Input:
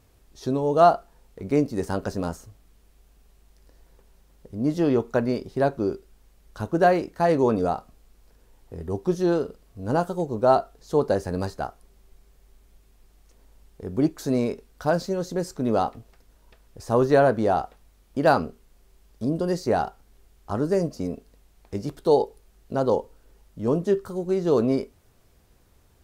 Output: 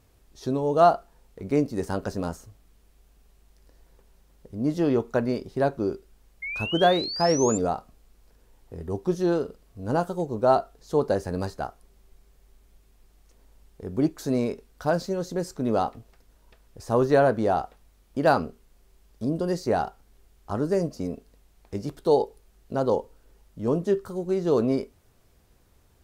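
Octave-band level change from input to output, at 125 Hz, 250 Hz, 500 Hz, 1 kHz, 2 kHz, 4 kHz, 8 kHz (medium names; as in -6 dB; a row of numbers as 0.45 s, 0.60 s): -1.5 dB, -1.5 dB, -1.5 dB, -1.5 dB, -0.5 dB, +6.0 dB, +6.5 dB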